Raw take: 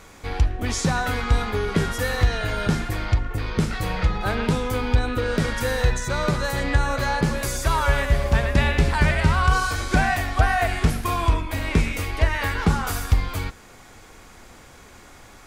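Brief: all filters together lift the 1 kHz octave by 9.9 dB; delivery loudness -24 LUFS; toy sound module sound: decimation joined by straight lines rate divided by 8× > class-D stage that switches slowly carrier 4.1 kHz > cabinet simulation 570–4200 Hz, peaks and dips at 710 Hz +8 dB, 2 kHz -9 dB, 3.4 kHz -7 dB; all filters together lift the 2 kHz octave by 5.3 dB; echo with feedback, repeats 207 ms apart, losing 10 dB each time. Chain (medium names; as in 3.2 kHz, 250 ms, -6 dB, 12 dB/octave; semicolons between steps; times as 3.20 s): peaking EQ 1 kHz +8.5 dB; peaking EQ 2 kHz +8 dB; feedback delay 207 ms, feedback 32%, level -10 dB; decimation joined by straight lines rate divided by 8×; class-D stage that switches slowly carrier 4.1 kHz; cabinet simulation 570–4200 Hz, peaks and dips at 710 Hz +8 dB, 2 kHz -9 dB, 3.4 kHz -7 dB; trim -3 dB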